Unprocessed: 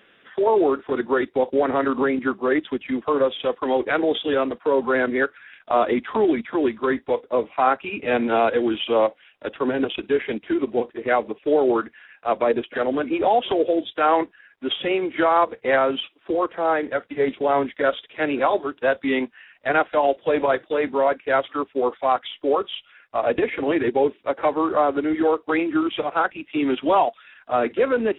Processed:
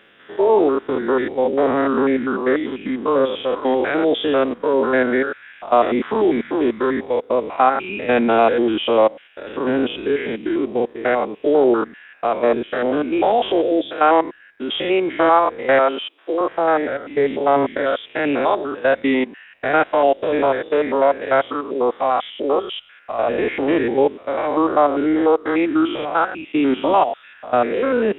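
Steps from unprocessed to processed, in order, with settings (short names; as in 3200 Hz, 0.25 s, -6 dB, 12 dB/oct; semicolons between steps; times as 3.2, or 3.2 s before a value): stepped spectrum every 0.1 s; 15.79–16.41 HPF 340 Hz 12 dB/oct; gain +5.5 dB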